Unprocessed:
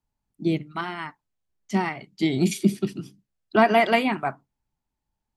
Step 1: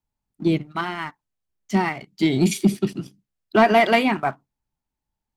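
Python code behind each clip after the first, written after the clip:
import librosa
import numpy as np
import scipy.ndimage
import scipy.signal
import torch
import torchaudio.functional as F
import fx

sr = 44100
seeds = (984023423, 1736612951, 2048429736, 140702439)

y = fx.leveller(x, sr, passes=1)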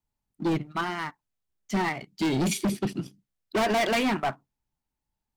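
y = np.clip(x, -10.0 ** (-20.5 / 20.0), 10.0 ** (-20.5 / 20.0))
y = y * 10.0 ** (-1.5 / 20.0)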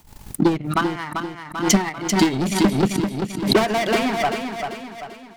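y = fx.transient(x, sr, attack_db=11, sustain_db=-11)
y = fx.echo_feedback(y, sr, ms=391, feedback_pct=45, wet_db=-6.5)
y = fx.pre_swell(y, sr, db_per_s=87.0)
y = y * 10.0 ** (1.5 / 20.0)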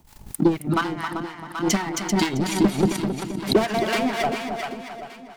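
y = x + 10.0 ** (-8.5 / 20.0) * np.pad(x, (int(269 * sr / 1000.0), 0))[:len(x)]
y = fx.harmonic_tremolo(y, sr, hz=4.2, depth_pct=70, crossover_hz=800.0)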